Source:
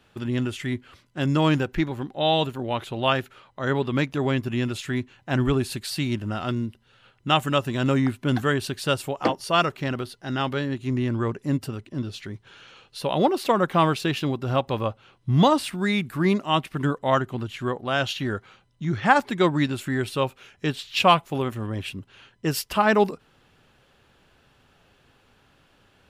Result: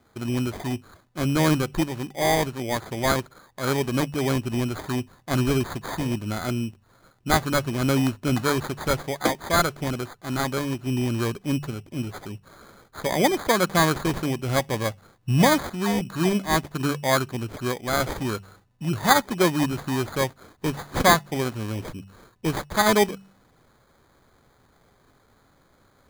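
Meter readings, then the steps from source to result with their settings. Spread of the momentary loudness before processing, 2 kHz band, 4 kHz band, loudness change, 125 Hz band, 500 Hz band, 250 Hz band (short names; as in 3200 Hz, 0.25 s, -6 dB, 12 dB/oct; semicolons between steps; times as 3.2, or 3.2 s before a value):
11 LU, +1.0 dB, -1.0 dB, 0.0 dB, -0.5 dB, -0.5 dB, 0.0 dB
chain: de-hum 48.4 Hz, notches 4; sample-and-hold 16×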